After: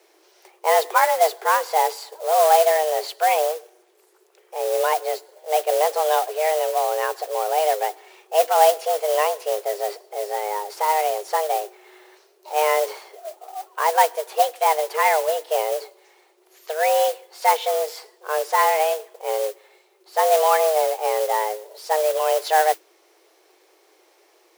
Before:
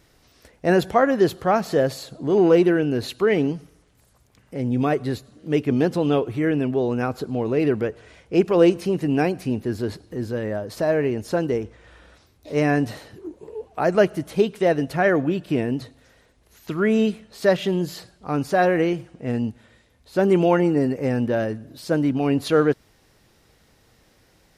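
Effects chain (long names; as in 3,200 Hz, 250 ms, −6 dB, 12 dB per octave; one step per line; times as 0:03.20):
noise that follows the level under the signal 13 dB
frequency shifter +310 Hz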